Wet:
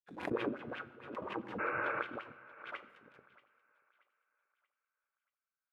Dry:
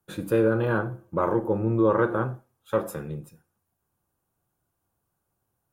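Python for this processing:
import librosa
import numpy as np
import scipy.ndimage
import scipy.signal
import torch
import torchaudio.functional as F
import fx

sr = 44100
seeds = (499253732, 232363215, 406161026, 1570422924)

p1 = fx.phase_scramble(x, sr, seeds[0], window_ms=50)
p2 = fx.peak_eq(p1, sr, hz=530.0, db=-3.5, octaves=1.0)
p3 = fx.hum_notches(p2, sr, base_hz=50, count=4)
p4 = fx.schmitt(p3, sr, flips_db=-30.0)
p5 = p3 + (p4 * 10.0 ** (-9.0 / 20.0))
p6 = fx.power_curve(p5, sr, exponent=2.0)
p7 = fx.wah_lfo(p6, sr, hz=5.5, low_hz=210.0, high_hz=3000.0, q=3.5)
p8 = fx.spec_repair(p7, sr, seeds[1], start_s=1.62, length_s=0.35, low_hz=200.0, high_hz=2900.0, source='after')
p9 = fx.tremolo_shape(p8, sr, shape='saw_up', hz=4.7, depth_pct=35)
p10 = p9 + fx.echo_thinned(p9, sr, ms=632, feedback_pct=40, hz=510.0, wet_db=-20.0, dry=0)
p11 = fx.rev_fdn(p10, sr, rt60_s=0.81, lf_ratio=1.35, hf_ratio=1.0, size_ms=73.0, drr_db=10.5)
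p12 = fx.pre_swell(p11, sr, db_per_s=85.0)
y = p12 * 10.0 ** (4.0 / 20.0)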